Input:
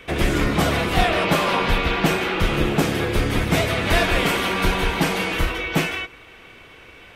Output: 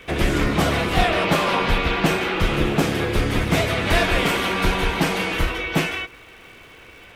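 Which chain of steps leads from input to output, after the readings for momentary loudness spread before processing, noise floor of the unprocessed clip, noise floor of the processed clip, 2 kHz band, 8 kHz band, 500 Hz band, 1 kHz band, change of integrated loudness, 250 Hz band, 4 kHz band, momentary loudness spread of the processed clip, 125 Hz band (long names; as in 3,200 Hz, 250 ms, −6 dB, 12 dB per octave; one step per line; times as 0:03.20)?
3 LU, −45 dBFS, −45 dBFS, 0.0 dB, −1.0 dB, 0.0 dB, 0.0 dB, 0.0 dB, 0.0 dB, 0.0 dB, 4 LU, 0.0 dB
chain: surface crackle 440 per second −44 dBFS
highs frequency-modulated by the lows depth 0.11 ms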